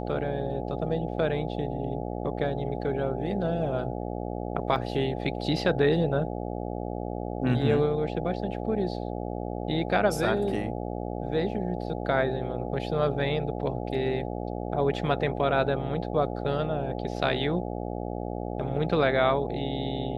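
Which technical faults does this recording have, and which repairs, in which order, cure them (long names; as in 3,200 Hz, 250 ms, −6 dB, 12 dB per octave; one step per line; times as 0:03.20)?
mains buzz 60 Hz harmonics 14 −33 dBFS
0:04.76: drop-out 4.1 ms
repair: hum removal 60 Hz, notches 14
repair the gap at 0:04.76, 4.1 ms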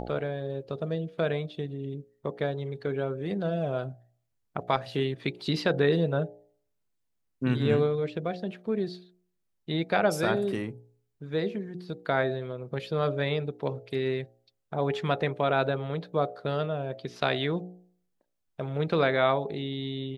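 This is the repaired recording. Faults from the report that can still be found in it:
none of them is left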